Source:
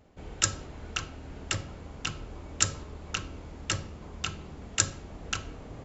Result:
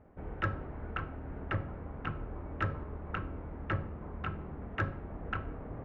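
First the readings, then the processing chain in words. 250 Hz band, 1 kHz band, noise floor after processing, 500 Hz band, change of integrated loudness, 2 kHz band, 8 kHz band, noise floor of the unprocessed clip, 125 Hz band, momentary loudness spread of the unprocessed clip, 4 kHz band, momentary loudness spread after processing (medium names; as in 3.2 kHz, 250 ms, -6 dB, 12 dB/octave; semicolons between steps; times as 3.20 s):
+1.0 dB, +0.5 dB, -45 dBFS, +1.0 dB, -6.5 dB, -3.5 dB, no reading, -46 dBFS, +1.0 dB, 15 LU, -19.0 dB, 7 LU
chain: low-pass 1.8 kHz 24 dB/octave; trim +1 dB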